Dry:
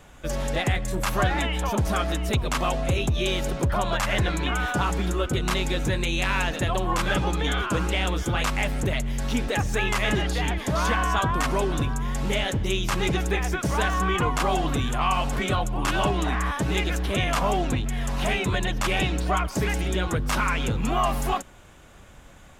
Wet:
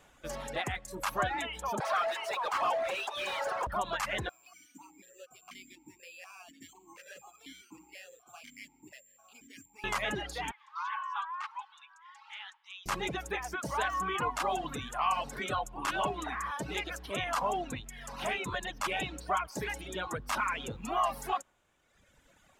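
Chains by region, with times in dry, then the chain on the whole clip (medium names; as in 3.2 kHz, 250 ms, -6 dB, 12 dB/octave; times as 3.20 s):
1.80–3.67 s: CVSD coder 64 kbps + high-pass 580 Hz 24 dB/octave + overdrive pedal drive 28 dB, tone 1.4 kHz, clips at -15 dBFS
4.29–9.84 s: peaking EQ 530 Hz -8 dB 2.2 oct + careless resampling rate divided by 6×, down filtered, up zero stuff + stepped vowel filter 4.1 Hz
10.51–12.86 s: rippled Chebyshev high-pass 830 Hz, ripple 3 dB + modulation noise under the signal 31 dB + tape spacing loss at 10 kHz 24 dB
whole clip: dynamic bell 1 kHz, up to +5 dB, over -37 dBFS, Q 0.96; reverb removal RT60 1.5 s; bass shelf 200 Hz -10 dB; trim -8 dB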